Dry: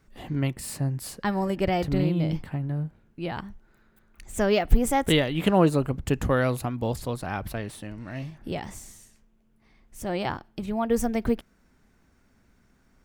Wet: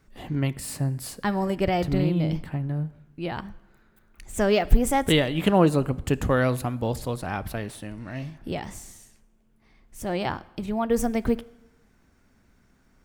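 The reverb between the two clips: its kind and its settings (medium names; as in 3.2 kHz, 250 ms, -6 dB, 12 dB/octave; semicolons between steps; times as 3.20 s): plate-style reverb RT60 0.98 s, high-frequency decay 0.85×, DRR 18 dB; trim +1 dB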